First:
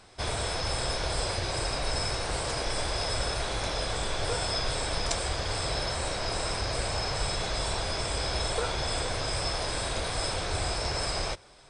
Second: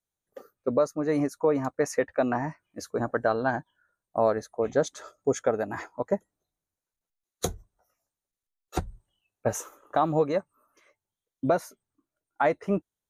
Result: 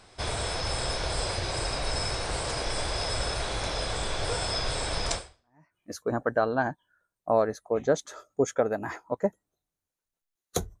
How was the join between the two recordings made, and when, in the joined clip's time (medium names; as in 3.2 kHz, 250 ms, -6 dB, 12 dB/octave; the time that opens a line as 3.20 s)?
first
5.45 s: go over to second from 2.33 s, crossfade 0.60 s exponential